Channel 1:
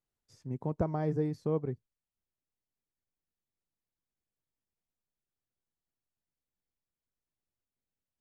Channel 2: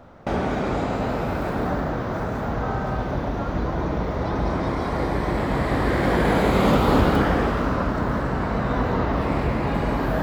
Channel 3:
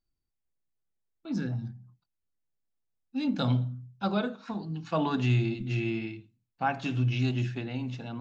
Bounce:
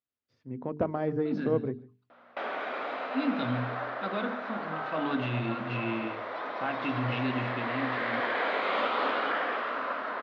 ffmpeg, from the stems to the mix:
-filter_complex "[0:a]aeval=exprs='0.141*(cos(1*acos(clip(val(0)/0.141,-1,1)))-cos(1*PI/2))+0.00447*(cos(6*acos(clip(val(0)/0.141,-1,1)))-cos(6*PI/2))':c=same,volume=-4.5dB,asplit=2[a][b];[b]volume=-23dB[c];[1:a]aeval=exprs='val(0)+0.0178*(sin(2*PI*60*n/s)+sin(2*PI*2*60*n/s)/2+sin(2*PI*3*60*n/s)/3+sin(2*PI*4*60*n/s)/4+sin(2*PI*5*60*n/s)/5)':c=same,highpass=720,adelay=2100,volume=-12.5dB[d];[2:a]aeval=exprs='0.178*(cos(1*acos(clip(val(0)/0.178,-1,1)))-cos(1*PI/2))+0.00708*(cos(7*acos(clip(val(0)/0.178,-1,1)))-cos(7*PI/2))':c=same,alimiter=limit=-22.5dB:level=0:latency=1,volume=-7.5dB,asplit=2[e][f];[f]volume=-14.5dB[g];[c][g]amix=inputs=2:normalize=0,aecho=0:1:147:1[h];[a][d][e][h]amix=inputs=4:normalize=0,bandreject=f=50:t=h:w=6,bandreject=f=100:t=h:w=6,bandreject=f=150:t=h:w=6,bandreject=f=200:t=h:w=6,bandreject=f=250:t=h:w=6,bandreject=f=300:t=h:w=6,bandreject=f=350:t=h:w=6,bandreject=f=400:t=h:w=6,bandreject=f=450:t=h:w=6,dynaudnorm=f=210:g=5:m=10dB,highpass=150,equalizer=f=170:t=q:w=4:g=-9,equalizer=f=250:t=q:w=4:g=4,equalizer=f=360:t=q:w=4:g=-3,equalizer=f=850:t=q:w=4:g=-6,lowpass=f=3.6k:w=0.5412,lowpass=f=3.6k:w=1.3066"

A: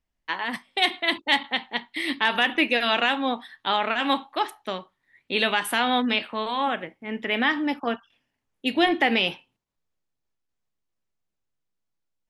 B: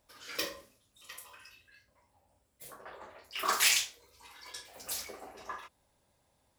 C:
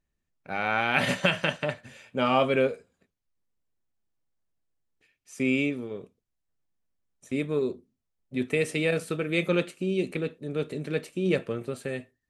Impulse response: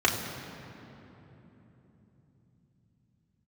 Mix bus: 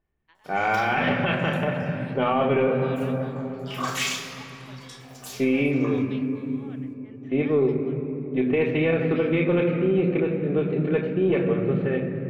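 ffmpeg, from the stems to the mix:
-filter_complex "[0:a]tremolo=f=1.3:d=0.8,volume=-19.5dB[a];[1:a]highshelf=f=9k:g=-4.5,adelay=350,volume=-3dB,asplit=2[b][c];[c]volume=-10dB[d];[2:a]aeval=exprs='(tanh(5.01*val(0)+0.3)-tanh(0.3))/5.01':c=same,lowpass=f=2.6k:w=0.5412,lowpass=f=2.6k:w=1.3066,volume=1dB,asplit=3[e][f][g];[f]volume=-10dB[h];[g]apad=whole_len=305883[i];[b][i]sidechaincompress=threshold=-30dB:ratio=8:attack=16:release=677[j];[a][j]amix=inputs=2:normalize=0,acompressor=threshold=-40dB:ratio=6,volume=0dB[k];[3:a]atrim=start_sample=2205[l];[d][h]amix=inputs=2:normalize=0[m];[m][l]afir=irnorm=-1:irlink=0[n];[e][k][n]amix=inputs=3:normalize=0,alimiter=limit=-13dB:level=0:latency=1:release=75"

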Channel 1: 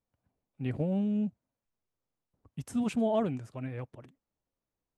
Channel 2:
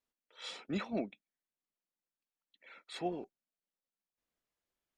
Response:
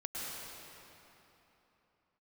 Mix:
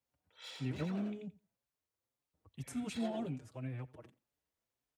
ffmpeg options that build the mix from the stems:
-filter_complex "[0:a]acrossover=split=260|3000[a][b][c];[b]acompressor=threshold=-45dB:ratio=2.5[d];[a][d][c]amix=inputs=3:normalize=0,asplit=2[e][f];[f]adelay=5.4,afreqshift=1.9[g];[e][g]amix=inputs=2:normalize=1,volume=0dB,asplit=2[h][i];[i]volume=-21dB[j];[1:a]lowshelf=f=410:g=-7,bandreject=f=1.2k:w=12,asoftclip=type=hard:threshold=-39dB,volume=-4.5dB,asplit=2[k][l];[l]volume=-4dB[m];[j][m]amix=inputs=2:normalize=0,aecho=0:1:86|172|258:1|0.17|0.0289[n];[h][k][n]amix=inputs=3:normalize=0,highpass=51,equalizer=f=190:w=2:g=-5"

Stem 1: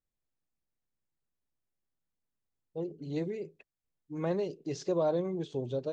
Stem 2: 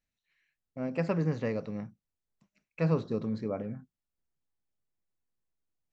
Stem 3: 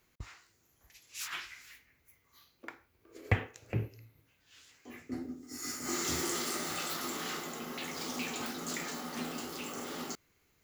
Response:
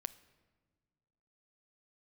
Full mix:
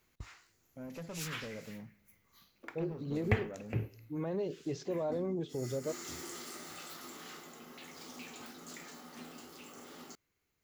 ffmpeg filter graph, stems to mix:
-filter_complex "[0:a]highshelf=f=4.2k:g=-9,alimiter=level_in=5dB:limit=-24dB:level=0:latency=1:release=32,volume=-5dB,volume=0.5dB[a];[1:a]acompressor=threshold=-31dB:ratio=3,asoftclip=type=tanh:threshold=-31.5dB,volume=-10dB,asplit=2[b][c];[c]volume=-4.5dB[d];[2:a]volume=-2dB,afade=t=out:st=4.72:d=0.65:silence=0.375837[e];[3:a]atrim=start_sample=2205[f];[d][f]afir=irnorm=-1:irlink=0[g];[a][b][e][g]amix=inputs=4:normalize=0"

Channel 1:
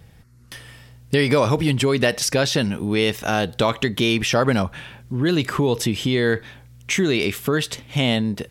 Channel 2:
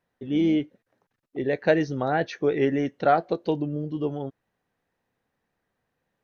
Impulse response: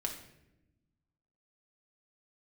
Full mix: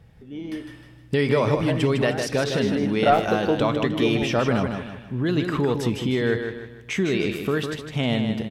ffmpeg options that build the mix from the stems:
-filter_complex "[0:a]highshelf=f=4.1k:g=-11.5,volume=-5.5dB,asplit=3[a][b][c];[b]volume=-10.5dB[d];[c]volume=-4.5dB[e];[1:a]acontrast=85,volume=-8.5dB,afade=t=in:st=2.48:d=0.59:silence=0.237137,asplit=2[f][g];[g]volume=-3.5dB[h];[2:a]atrim=start_sample=2205[i];[d][h]amix=inputs=2:normalize=0[j];[j][i]afir=irnorm=-1:irlink=0[k];[e]aecho=0:1:155|310|465|620|775:1|0.39|0.152|0.0593|0.0231[l];[a][f][k][l]amix=inputs=4:normalize=0"

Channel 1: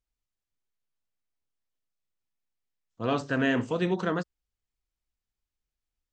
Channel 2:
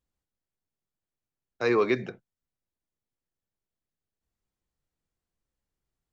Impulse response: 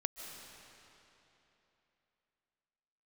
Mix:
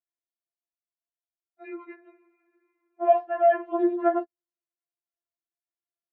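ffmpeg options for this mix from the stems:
-filter_complex "[0:a]agate=range=-16dB:threshold=-36dB:ratio=16:detection=peak,equalizer=f=490:t=o:w=2.5:g=10.5,volume=-3dB[a];[1:a]volume=-13.5dB,asplit=2[b][c];[c]volume=-13.5dB[d];[2:a]atrim=start_sample=2205[e];[d][e]afir=irnorm=-1:irlink=0[f];[a][b][f]amix=inputs=3:normalize=0,highpass=260,equalizer=f=360:t=q:w=4:g=-3,equalizer=f=640:t=q:w=4:g=7,equalizer=f=1.1k:t=q:w=4:g=-3,lowpass=f=2.1k:w=0.5412,lowpass=f=2.1k:w=1.3066,afftfilt=real='re*4*eq(mod(b,16),0)':imag='im*4*eq(mod(b,16),0)':win_size=2048:overlap=0.75"

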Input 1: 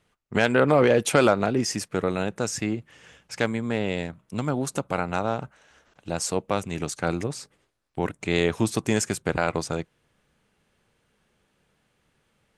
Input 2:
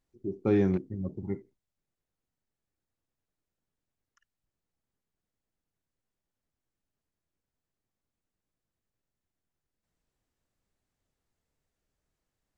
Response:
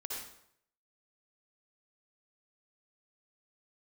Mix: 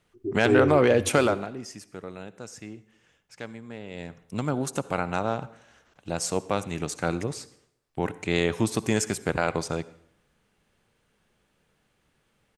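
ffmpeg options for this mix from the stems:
-filter_complex "[0:a]volume=10.5dB,afade=t=out:st=1.13:d=0.37:silence=0.237137,afade=t=in:st=3.9:d=0.36:silence=0.237137,asplit=2[a][b];[b]volume=-15dB[c];[1:a]aecho=1:1:2.7:0.97,volume=-1.5dB[d];[2:a]atrim=start_sample=2205[e];[c][e]afir=irnorm=-1:irlink=0[f];[a][d][f]amix=inputs=3:normalize=0"

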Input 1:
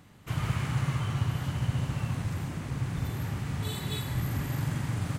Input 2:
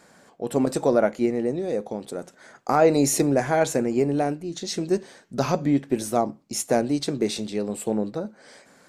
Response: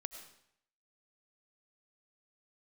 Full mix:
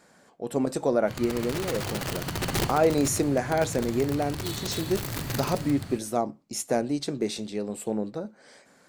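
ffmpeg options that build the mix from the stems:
-filter_complex "[0:a]equalizer=f=4.4k:w=6.9:g=11.5,dynaudnorm=f=170:g=7:m=5dB,aeval=exprs='(mod(10*val(0)+1,2)-1)/10':c=same,adelay=800,volume=-2.5dB,asplit=2[a][b];[b]volume=-4dB[c];[1:a]volume=-4dB,asplit=2[d][e];[e]apad=whole_len=264020[f];[a][f]sidechaincompress=threshold=-42dB:ratio=8:attack=5.8:release=437[g];[2:a]atrim=start_sample=2205[h];[c][h]afir=irnorm=-1:irlink=0[i];[g][d][i]amix=inputs=3:normalize=0"

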